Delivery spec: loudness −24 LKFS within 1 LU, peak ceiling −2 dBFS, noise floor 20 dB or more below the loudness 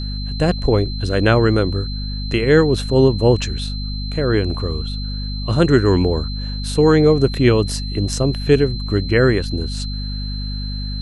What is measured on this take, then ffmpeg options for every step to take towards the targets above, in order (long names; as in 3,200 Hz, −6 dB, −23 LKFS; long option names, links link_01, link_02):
mains hum 50 Hz; hum harmonics up to 250 Hz; level of the hum −22 dBFS; interfering tone 4,100 Hz; level of the tone −31 dBFS; integrated loudness −18.0 LKFS; sample peak −1.0 dBFS; target loudness −24.0 LKFS
→ -af "bandreject=frequency=50:width_type=h:width=6,bandreject=frequency=100:width_type=h:width=6,bandreject=frequency=150:width_type=h:width=6,bandreject=frequency=200:width_type=h:width=6,bandreject=frequency=250:width_type=h:width=6"
-af "bandreject=frequency=4100:width=30"
-af "volume=-6dB"